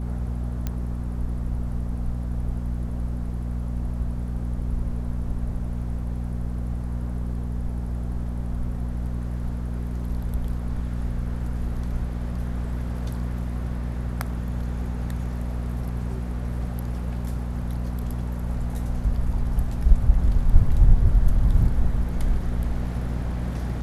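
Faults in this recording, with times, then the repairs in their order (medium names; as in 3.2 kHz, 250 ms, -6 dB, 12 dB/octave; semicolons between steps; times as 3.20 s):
hum 60 Hz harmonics 4 -28 dBFS
0.67 s: pop -14 dBFS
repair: de-click; de-hum 60 Hz, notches 4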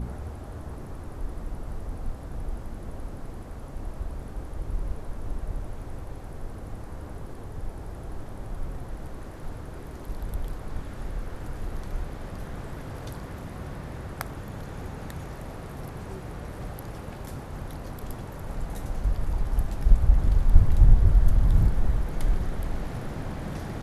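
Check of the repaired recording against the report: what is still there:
nothing left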